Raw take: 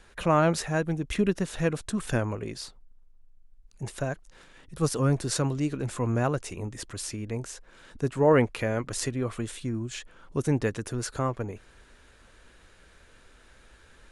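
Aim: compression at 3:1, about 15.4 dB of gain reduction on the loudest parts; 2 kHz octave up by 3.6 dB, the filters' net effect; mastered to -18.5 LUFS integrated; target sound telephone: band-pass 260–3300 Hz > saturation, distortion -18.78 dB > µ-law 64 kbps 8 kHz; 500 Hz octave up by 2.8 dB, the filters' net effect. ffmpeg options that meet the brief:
-af "equalizer=f=500:t=o:g=3.5,equalizer=f=2000:t=o:g=5,acompressor=threshold=0.0178:ratio=3,highpass=260,lowpass=3300,asoftclip=threshold=0.0501,volume=13.3" -ar 8000 -c:a pcm_mulaw

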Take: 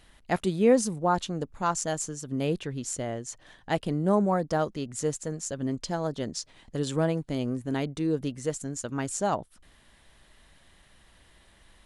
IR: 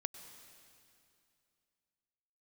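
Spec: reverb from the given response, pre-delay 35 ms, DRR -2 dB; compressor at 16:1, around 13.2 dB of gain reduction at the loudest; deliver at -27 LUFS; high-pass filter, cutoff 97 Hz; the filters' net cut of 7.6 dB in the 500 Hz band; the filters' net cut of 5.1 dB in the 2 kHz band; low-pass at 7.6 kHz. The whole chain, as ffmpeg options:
-filter_complex "[0:a]highpass=97,lowpass=7600,equalizer=f=500:t=o:g=-9,equalizer=f=2000:t=o:g=-6,acompressor=threshold=0.02:ratio=16,asplit=2[s0][s1];[1:a]atrim=start_sample=2205,adelay=35[s2];[s1][s2]afir=irnorm=-1:irlink=0,volume=1.5[s3];[s0][s3]amix=inputs=2:normalize=0,volume=2.66"

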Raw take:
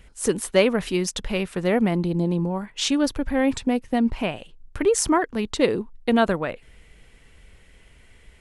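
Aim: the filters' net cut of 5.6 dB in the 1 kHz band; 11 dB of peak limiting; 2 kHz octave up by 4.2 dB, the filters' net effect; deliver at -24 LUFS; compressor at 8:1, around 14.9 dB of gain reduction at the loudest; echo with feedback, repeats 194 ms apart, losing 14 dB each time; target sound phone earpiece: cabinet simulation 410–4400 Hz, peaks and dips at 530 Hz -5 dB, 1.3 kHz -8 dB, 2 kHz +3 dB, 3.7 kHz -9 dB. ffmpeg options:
-af "equalizer=f=1000:t=o:g=-6.5,equalizer=f=2000:t=o:g=6.5,acompressor=threshold=0.0316:ratio=8,alimiter=level_in=1.58:limit=0.0631:level=0:latency=1,volume=0.631,highpass=410,equalizer=f=530:t=q:w=4:g=-5,equalizer=f=1300:t=q:w=4:g=-8,equalizer=f=2000:t=q:w=4:g=3,equalizer=f=3700:t=q:w=4:g=-9,lowpass=f=4400:w=0.5412,lowpass=f=4400:w=1.3066,aecho=1:1:194|388:0.2|0.0399,volume=10"

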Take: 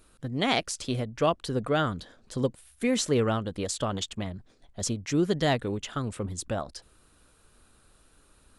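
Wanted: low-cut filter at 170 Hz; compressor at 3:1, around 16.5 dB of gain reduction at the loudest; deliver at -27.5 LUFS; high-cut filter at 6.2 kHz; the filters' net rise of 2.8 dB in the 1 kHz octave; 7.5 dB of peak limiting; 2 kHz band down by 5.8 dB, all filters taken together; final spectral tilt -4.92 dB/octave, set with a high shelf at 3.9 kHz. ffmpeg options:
-af "highpass=170,lowpass=6200,equalizer=f=1000:t=o:g=6.5,equalizer=f=2000:t=o:g=-8.5,highshelf=f=3900:g=-5.5,acompressor=threshold=0.00708:ratio=3,volume=7.94,alimiter=limit=0.188:level=0:latency=1"

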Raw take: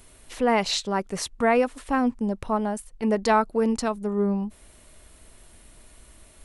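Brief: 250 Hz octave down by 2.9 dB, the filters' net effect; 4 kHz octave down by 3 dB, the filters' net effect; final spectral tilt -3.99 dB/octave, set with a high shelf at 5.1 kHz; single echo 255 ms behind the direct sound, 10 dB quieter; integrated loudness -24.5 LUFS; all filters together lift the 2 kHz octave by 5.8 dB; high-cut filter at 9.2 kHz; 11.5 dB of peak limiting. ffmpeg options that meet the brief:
-af "lowpass=9200,equalizer=f=250:t=o:g=-3.5,equalizer=f=2000:t=o:g=8,equalizer=f=4000:t=o:g=-8.5,highshelf=f=5100:g=6.5,alimiter=limit=0.126:level=0:latency=1,aecho=1:1:255:0.316,volume=1.58"

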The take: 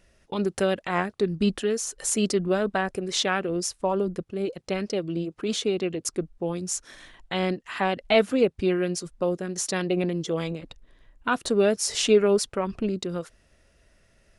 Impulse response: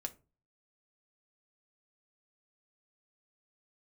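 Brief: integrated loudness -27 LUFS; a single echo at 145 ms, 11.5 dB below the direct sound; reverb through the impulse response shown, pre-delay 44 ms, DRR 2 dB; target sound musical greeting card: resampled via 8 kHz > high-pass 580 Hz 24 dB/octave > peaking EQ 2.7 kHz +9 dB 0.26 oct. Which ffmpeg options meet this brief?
-filter_complex "[0:a]aecho=1:1:145:0.266,asplit=2[s0][s1];[1:a]atrim=start_sample=2205,adelay=44[s2];[s1][s2]afir=irnorm=-1:irlink=0,volume=0.944[s3];[s0][s3]amix=inputs=2:normalize=0,aresample=8000,aresample=44100,highpass=f=580:w=0.5412,highpass=f=580:w=1.3066,equalizer=f=2700:t=o:w=0.26:g=9,volume=1.12"

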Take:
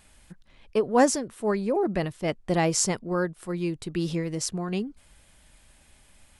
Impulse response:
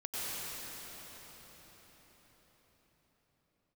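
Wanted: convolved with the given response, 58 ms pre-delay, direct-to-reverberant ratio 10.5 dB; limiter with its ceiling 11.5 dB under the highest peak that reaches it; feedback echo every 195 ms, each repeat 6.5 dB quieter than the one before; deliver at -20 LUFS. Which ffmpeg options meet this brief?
-filter_complex "[0:a]alimiter=limit=0.126:level=0:latency=1,aecho=1:1:195|390|585|780|975|1170:0.473|0.222|0.105|0.0491|0.0231|0.0109,asplit=2[s0][s1];[1:a]atrim=start_sample=2205,adelay=58[s2];[s1][s2]afir=irnorm=-1:irlink=0,volume=0.168[s3];[s0][s3]amix=inputs=2:normalize=0,volume=2.51"

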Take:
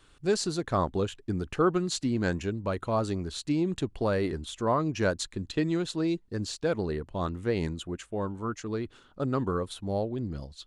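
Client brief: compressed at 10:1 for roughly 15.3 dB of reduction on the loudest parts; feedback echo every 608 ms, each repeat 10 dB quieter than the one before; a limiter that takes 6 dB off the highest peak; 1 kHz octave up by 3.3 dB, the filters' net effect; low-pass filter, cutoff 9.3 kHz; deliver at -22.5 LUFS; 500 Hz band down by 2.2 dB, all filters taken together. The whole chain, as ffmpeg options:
-af "lowpass=9300,equalizer=f=500:t=o:g=-4,equalizer=f=1000:t=o:g=5,acompressor=threshold=0.0158:ratio=10,alimiter=level_in=2.51:limit=0.0631:level=0:latency=1,volume=0.398,aecho=1:1:608|1216|1824|2432:0.316|0.101|0.0324|0.0104,volume=8.91"

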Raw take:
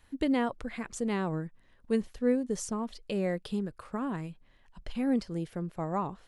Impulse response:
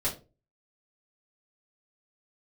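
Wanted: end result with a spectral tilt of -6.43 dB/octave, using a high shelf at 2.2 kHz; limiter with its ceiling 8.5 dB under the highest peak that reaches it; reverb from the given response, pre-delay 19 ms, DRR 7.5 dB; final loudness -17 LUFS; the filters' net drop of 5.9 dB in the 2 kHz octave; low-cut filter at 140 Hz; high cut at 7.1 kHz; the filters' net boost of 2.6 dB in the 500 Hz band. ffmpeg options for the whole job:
-filter_complex "[0:a]highpass=140,lowpass=7100,equalizer=f=500:t=o:g=3.5,equalizer=f=2000:t=o:g=-3.5,highshelf=f=2200:g=-7.5,alimiter=limit=0.0631:level=0:latency=1,asplit=2[s0][s1];[1:a]atrim=start_sample=2205,adelay=19[s2];[s1][s2]afir=irnorm=-1:irlink=0,volume=0.2[s3];[s0][s3]amix=inputs=2:normalize=0,volume=7.08"

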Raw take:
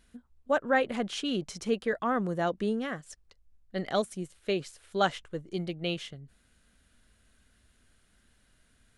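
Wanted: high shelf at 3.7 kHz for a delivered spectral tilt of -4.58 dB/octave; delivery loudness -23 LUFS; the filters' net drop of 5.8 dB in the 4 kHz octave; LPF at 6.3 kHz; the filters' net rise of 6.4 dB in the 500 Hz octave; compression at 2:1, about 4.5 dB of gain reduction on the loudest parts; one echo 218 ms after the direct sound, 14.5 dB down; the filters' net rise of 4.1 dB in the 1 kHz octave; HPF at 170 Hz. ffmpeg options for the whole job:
-af "highpass=170,lowpass=6300,equalizer=f=500:t=o:g=7,equalizer=f=1000:t=o:g=3.5,highshelf=f=3700:g=-8,equalizer=f=4000:t=o:g=-3.5,acompressor=threshold=0.0631:ratio=2,aecho=1:1:218:0.188,volume=2.24"

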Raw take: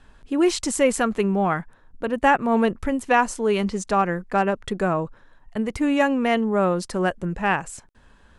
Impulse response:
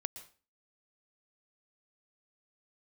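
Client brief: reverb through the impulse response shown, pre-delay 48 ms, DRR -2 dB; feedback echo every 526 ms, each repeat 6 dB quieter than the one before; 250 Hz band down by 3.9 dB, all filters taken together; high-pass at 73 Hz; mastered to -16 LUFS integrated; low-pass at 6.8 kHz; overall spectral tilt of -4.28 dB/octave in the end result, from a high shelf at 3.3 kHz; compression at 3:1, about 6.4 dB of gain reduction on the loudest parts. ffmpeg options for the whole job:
-filter_complex "[0:a]highpass=73,lowpass=6800,equalizer=f=250:t=o:g=-5,highshelf=f=3300:g=3.5,acompressor=threshold=0.0794:ratio=3,aecho=1:1:526|1052|1578|2104|2630|3156:0.501|0.251|0.125|0.0626|0.0313|0.0157,asplit=2[s0][s1];[1:a]atrim=start_sample=2205,adelay=48[s2];[s1][s2]afir=irnorm=-1:irlink=0,volume=1.41[s3];[s0][s3]amix=inputs=2:normalize=0,volume=2.11"

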